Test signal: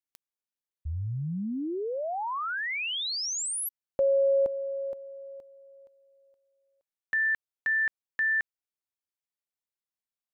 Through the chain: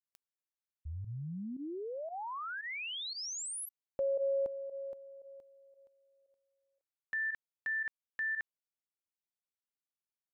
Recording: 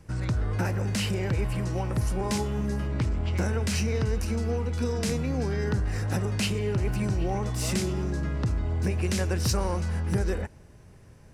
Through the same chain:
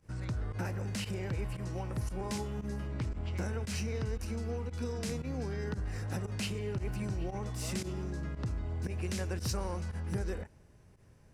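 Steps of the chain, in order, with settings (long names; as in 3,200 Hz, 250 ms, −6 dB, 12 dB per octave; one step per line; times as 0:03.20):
fake sidechain pumping 115 BPM, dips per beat 1, −16 dB, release 63 ms
level −8.5 dB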